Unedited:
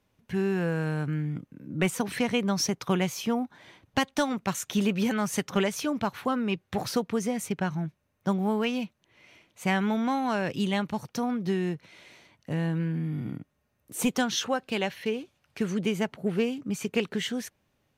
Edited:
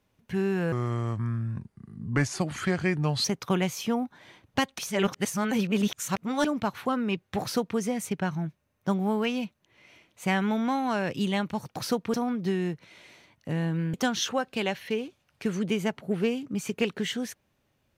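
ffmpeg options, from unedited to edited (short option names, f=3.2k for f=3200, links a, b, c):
-filter_complex "[0:a]asplit=8[a][b][c][d][e][f][g][h];[a]atrim=end=0.724[i];[b]atrim=start=0.72:end=2.64,asetpts=PTS-STARTPTS,asetrate=33516,aresample=44100[j];[c]atrim=start=2.636:end=4.182[k];[d]atrim=start=4.178:end=5.842,asetpts=PTS-STARTPTS,areverse[l];[e]atrim=start=5.838:end=11.152[m];[f]atrim=start=6.798:end=7.182[n];[g]atrim=start=11.148:end=12.952[o];[h]atrim=start=14.088[p];[i][j]acrossfade=d=0.004:c1=hsin:c2=hsin[q];[q][k]acrossfade=d=0.004:c1=hsin:c2=hsin[r];[r][l]acrossfade=d=0.004:c1=hsin:c2=hsin[s];[s][m]acrossfade=d=0.004:c1=hsin:c2=hsin[t];[t][n]acrossfade=d=0.004:c1=hsin:c2=hsin[u];[u][o]acrossfade=d=0.004:c1=hsin:c2=hsin[v];[v][p]acrossfade=d=0.004:c1=hsin:c2=hsin"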